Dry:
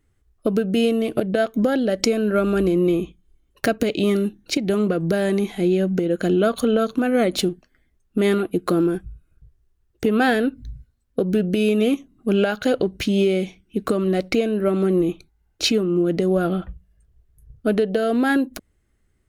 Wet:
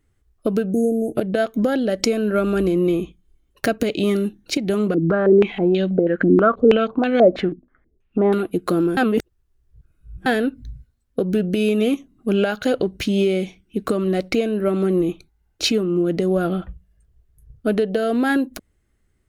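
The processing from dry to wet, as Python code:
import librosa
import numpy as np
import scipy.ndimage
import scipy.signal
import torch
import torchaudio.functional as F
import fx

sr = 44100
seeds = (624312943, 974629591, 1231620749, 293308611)

y = fx.spec_erase(x, sr, start_s=0.72, length_s=0.44, low_hz=870.0, high_hz=6000.0)
y = fx.filter_held_lowpass(y, sr, hz=6.2, low_hz=290.0, high_hz=3800.0, at=(4.94, 8.33))
y = fx.edit(y, sr, fx.reverse_span(start_s=8.97, length_s=1.29), tone=tone)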